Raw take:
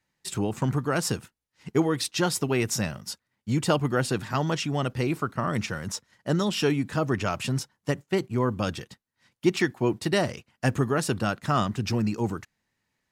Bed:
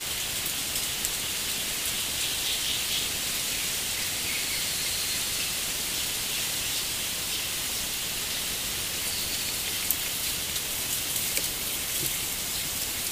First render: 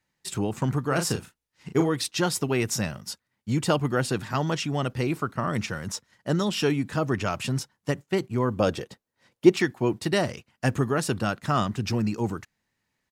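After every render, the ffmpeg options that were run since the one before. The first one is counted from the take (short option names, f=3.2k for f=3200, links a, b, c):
-filter_complex "[0:a]asplit=3[a][b][c];[a]afade=t=out:st=0.89:d=0.02[d];[b]asplit=2[e][f];[f]adelay=36,volume=-6.5dB[g];[e][g]amix=inputs=2:normalize=0,afade=t=in:st=0.89:d=0.02,afade=t=out:st=1.88:d=0.02[h];[c]afade=t=in:st=1.88:d=0.02[i];[d][h][i]amix=inputs=3:normalize=0,asettb=1/sr,asplit=3[j][k][l];[j]atrim=end=8.584[m];[k]atrim=start=8.58:end=9.54,asetpts=PTS-STARTPTS,afade=t=in:d=0.004:c=qsin,afade=t=out:st=0.956:d=0.004:c=qsin,equalizer=f=500:w=1:g=10[n];[l]atrim=start=9.536[o];[m][n]acrossfade=d=0.004:c1=hsin:c2=qsin[p];[p][o]acrossfade=d=0.004:c1=qsin:c2=hsin"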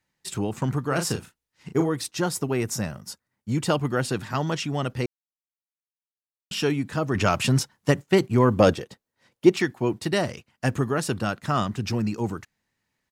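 -filter_complex "[0:a]asettb=1/sr,asplit=3[a][b][c];[a]atrim=end=1.714[d];[b]atrim=start=1.71:end=3.55,asetpts=PTS-STARTPTS,afade=t=in:d=0.004:c=qsin,afade=t=out:st=1.836:d=0.004:c=qsin,equalizer=f=3.2k:w=0.88:g=-6[e];[c]atrim=start=3.546[f];[d][e]acrossfade=d=0.004:c1=hsin:c2=qsin[g];[g][f]acrossfade=d=0.004:c1=qsin:c2=hsin,asettb=1/sr,asplit=3[h][i][j];[h]atrim=end=7.154[k];[i]atrim=start=7.15:end=8.74,asetpts=PTS-STARTPTS,afade=t=in:d=0.004:c=qsin,afade=t=out:st=1.586:d=0.004:c=qsin,acontrast=70[l];[j]atrim=start=8.736[m];[k][l]acrossfade=d=0.004:c1=hsin:c2=qsin[n];[n][m]acrossfade=d=0.004:c1=qsin:c2=hsin,asplit=3[o][p][q];[o]atrim=end=5.06,asetpts=PTS-STARTPTS,afade=t=out:st=5.056:d=0.004:c=hsin[r];[p]atrim=start=5.06:end=6.51,asetpts=PTS-STARTPTS,volume=0[s];[q]atrim=start=6.51,asetpts=PTS-STARTPTS,afade=t=in:d=0.004:c=hsin[t];[r][s][t]concat=n=3:v=0:a=1"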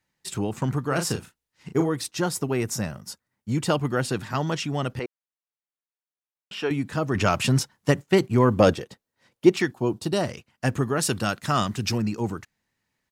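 -filter_complex "[0:a]asettb=1/sr,asplit=3[a][b][c];[a]atrim=end=4.994[d];[b]atrim=start=4.99:end=6.71,asetpts=PTS-STARTPTS,afade=t=in:d=0.004:c=qsin,afade=t=out:st=1.716:d=0.004:c=qsin,bass=f=250:g=-15,treble=f=4k:g=-15[e];[c]atrim=start=6.706[f];[d][e]acrossfade=d=0.004:c1=hsin:c2=qsin[g];[g][f]acrossfade=d=0.004:c1=qsin:c2=hsin,asettb=1/sr,asplit=3[h][i][j];[h]atrim=end=9.714[k];[i]atrim=start=9.71:end=10.21,asetpts=PTS-STARTPTS,afade=t=in:d=0.004:c=qsin,afade=t=out:st=0.496:d=0.004:c=qsin,equalizer=f=2k:t=o:w=0.55:g=-13.5[l];[j]atrim=start=10.206[m];[k][l]acrossfade=d=0.004:c1=hsin:c2=qsin[n];[n][m]acrossfade=d=0.004:c1=qsin:c2=hsin,asettb=1/sr,asplit=3[o][p][q];[o]atrim=end=11.004[r];[p]atrim=start=11:end=11.98,asetpts=PTS-STARTPTS,afade=t=in:d=0.004:c=qsin,afade=t=out:st=0.976:d=0.004:c=qsin,highshelf=f=2.6k:g=8[s];[q]atrim=start=11.976[t];[r][s]acrossfade=d=0.004:c1=hsin:c2=qsin[u];[u][t]acrossfade=d=0.004:c1=qsin:c2=hsin"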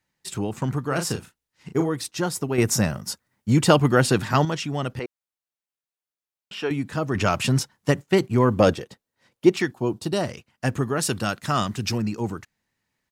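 -filter_complex "[0:a]asplit=3[a][b][c];[a]atrim=end=2.582[d];[b]atrim=start=2.578:end=4.452,asetpts=PTS-STARTPTS,volume=7dB[e];[c]atrim=start=4.448[f];[d][e]acrossfade=d=0.004:c1=hsin:c2=hsin[g];[g][f]acrossfade=d=0.004:c1=hsin:c2=hsin"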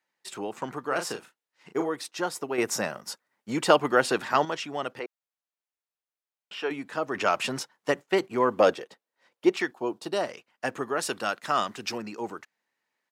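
-af "highpass=440,highshelf=f=4.2k:g=-9"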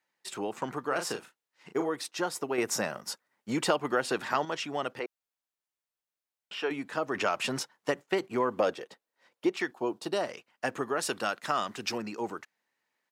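-af "acompressor=threshold=-26dB:ratio=2.5"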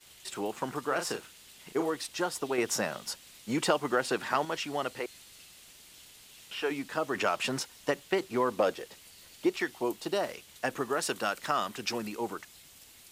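-filter_complex "[1:a]volume=-24dB[a];[0:a][a]amix=inputs=2:normalize=0"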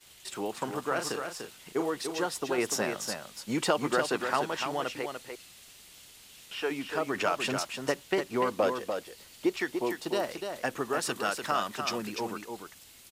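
-af "aecho=1:1:294:0.473"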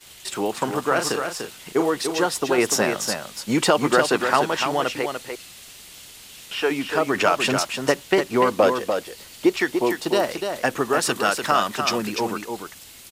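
-af "volume=9.5dB,alimiter=limit=-2dB:level=0:latency=1"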